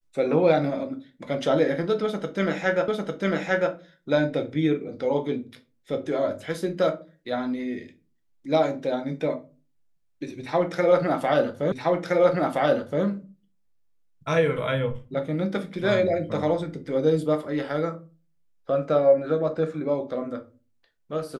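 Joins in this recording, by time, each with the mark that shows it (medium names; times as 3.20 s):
2.88 s: repeat of the last 0.85 s
11.72 s: repeat of the last 1.32 s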